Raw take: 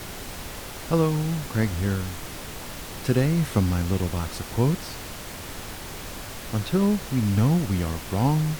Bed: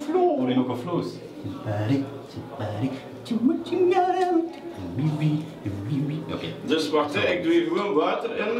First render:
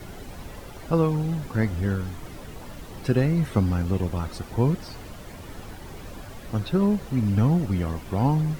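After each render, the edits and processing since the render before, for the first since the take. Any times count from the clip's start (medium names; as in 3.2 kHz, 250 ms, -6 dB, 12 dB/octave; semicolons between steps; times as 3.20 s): noise reduction 11 dB, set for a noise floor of -37 dBFS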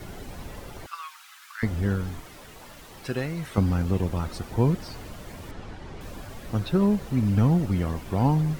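0.86–1.63 s: elliptic high-pass 1.2 kHz, stop band 70 dB; 2.21–3.58 s: bass shelf 490 Hz -11 dB; 5.51–6.01 s: distance through air 97 m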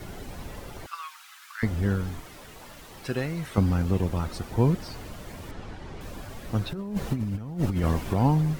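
6.73–8.16 s: compressor with a negative ratio -26 dBFS, ratio -0.5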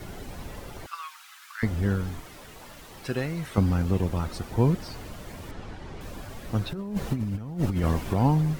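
no audible change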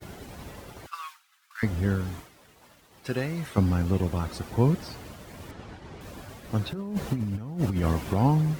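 high-pass 58 Hz; expander -38 dBFS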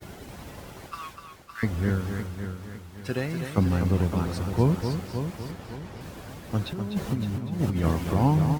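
on a send: delay 248 ms -7.5 dB; on the sum: modulated delay 559 ms, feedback 36%, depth 64 cents, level -9 dB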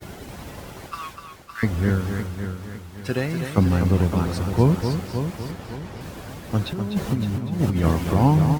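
trim +4.5 dB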